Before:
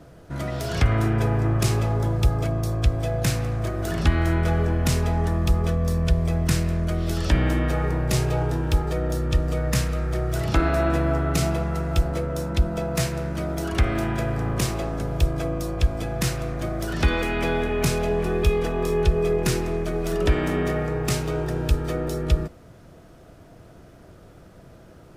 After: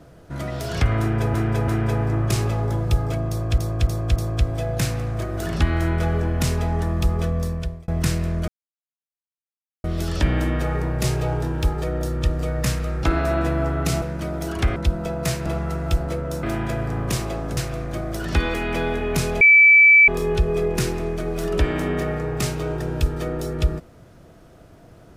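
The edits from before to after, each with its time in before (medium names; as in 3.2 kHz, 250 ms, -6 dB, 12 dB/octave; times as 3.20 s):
1.00–1.34 s: loop, 3 plays
2.61–2.90 s: loop, 4 plays
5.81–6.33 s: fade out
6.93 s: insert silence 1.36 s
10.12–10.52 s: delete
11.51–12.48 s: swap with 13.18–13.92 s
15.06–16.25 s: delete
18.09–18.76 s: bleep 2.31 kHz -8 dBFS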